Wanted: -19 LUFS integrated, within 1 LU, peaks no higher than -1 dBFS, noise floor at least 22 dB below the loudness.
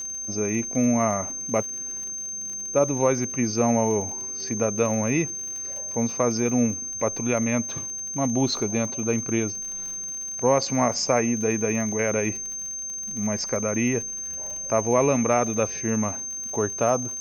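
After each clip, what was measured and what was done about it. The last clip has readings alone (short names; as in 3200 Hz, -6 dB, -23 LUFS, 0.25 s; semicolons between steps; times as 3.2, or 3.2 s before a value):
ticks 55/s; steady tone 6300 Hz; tone level -30 dBFS; loudness -24.5 LUFS; peak -7.5 dBFS; loudness target -19.0 LUFS
-> de-click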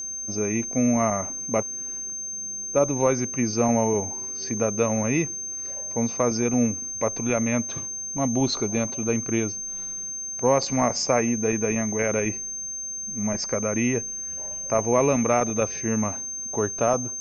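ticks 0.058/s; steady tone 6300 Hz; tone level -30 dBFS
-> notch 6300 Hz, Q 30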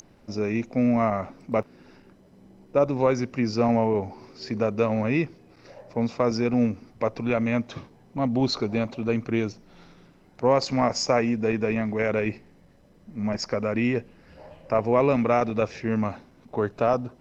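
steady tone none; loudness -25.5 LUFS; peak -8.0 dBFS; loudness target -19.0 LUFS
-> gain +6.5 dB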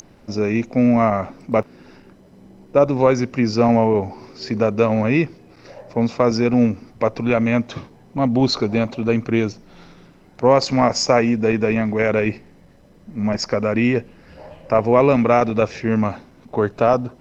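loudness -19.0 LUFS; peak -1.5 dBFS; noise floor -49 dBFS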